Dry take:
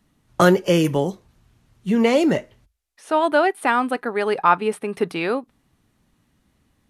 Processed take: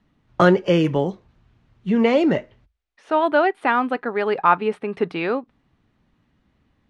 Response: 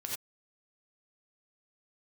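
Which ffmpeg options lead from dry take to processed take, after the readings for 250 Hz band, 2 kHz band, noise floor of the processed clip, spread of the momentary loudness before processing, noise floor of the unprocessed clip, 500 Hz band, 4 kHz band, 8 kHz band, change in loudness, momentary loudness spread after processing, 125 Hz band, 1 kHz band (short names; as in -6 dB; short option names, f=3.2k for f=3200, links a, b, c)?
0.0 dB, -0.5 dB, -67 dBFS, 9 LU, -66 dBFS, 0.0 dB, -2.5 dB, under -10 dB, 0.0 dB, 9 LU, 0.0 dB, 0.0 dB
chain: -af "lowpass=3.4k"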